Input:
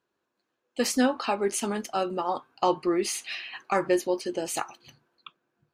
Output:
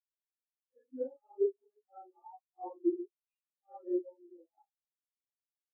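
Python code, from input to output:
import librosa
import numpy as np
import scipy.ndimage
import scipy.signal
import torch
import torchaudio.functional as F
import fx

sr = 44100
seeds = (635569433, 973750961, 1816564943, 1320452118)

y = fx.phase_scramble(x, sr, seeds[0], window_ms=200)
y = scipy.signal.sosfilt(scipy.signal.ellip(3, 1.0, 40, [290.0, 2800.0], 'bandpass', fs=sr, output='sos'), y)
y = fx.spectral_expand(y, sr, expansion=4.0)
y = y * 10.0 ** (-6.5 / 20.0)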